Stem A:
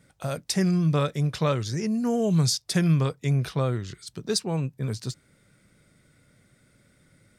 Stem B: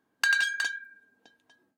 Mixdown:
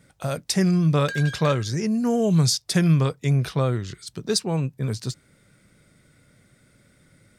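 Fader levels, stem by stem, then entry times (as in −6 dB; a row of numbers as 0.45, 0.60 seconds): +3.0, −8.5 decibels; 0.00, 0.85 seconds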